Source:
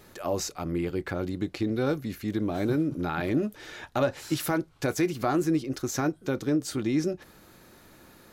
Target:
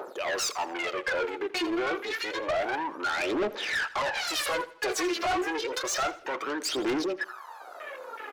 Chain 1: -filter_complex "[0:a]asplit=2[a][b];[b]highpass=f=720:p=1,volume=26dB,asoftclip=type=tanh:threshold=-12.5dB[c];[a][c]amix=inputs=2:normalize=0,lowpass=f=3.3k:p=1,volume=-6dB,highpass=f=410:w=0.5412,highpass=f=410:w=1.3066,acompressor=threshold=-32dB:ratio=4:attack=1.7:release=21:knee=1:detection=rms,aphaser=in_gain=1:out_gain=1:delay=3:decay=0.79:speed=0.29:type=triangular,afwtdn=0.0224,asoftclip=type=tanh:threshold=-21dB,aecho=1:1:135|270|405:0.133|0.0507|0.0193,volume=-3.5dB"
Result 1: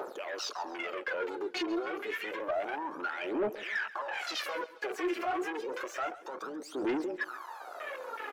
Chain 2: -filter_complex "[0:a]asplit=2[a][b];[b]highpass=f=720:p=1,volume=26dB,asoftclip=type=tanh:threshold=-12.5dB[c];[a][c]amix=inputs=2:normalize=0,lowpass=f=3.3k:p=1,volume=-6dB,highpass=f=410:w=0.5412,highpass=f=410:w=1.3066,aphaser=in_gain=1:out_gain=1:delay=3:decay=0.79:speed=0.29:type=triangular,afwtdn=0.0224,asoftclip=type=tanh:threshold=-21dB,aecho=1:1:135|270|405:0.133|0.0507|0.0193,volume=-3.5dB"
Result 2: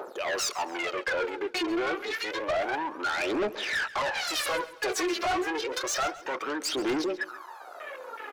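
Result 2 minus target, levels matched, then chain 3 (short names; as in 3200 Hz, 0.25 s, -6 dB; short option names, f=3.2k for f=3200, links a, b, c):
echo 52 ms late
-filter_complex "[0:a]asplit=2[a][b];[b]highpass=f=720:p=1,volume=26dB,asoftclip=type=tanh:threshold=-12.5dB[c];[a][c]amix=inputs=2:normalize=0,lowpass=f=3.3k:p=1,volume=-6dB,highpass=f=410:w=0.5412,highpass=f=410:w=1.3066,aphaser=in_gain=1:out_gain=1:delay=3:decay=0.79:speed=0.29:type=triangular,afwtdn=0.0224,asoftclip=type=tanh:threshold=-21dB,aecho=1:1:83|166|249:0.133|0.0507|0.0193,volume=-3.5dB"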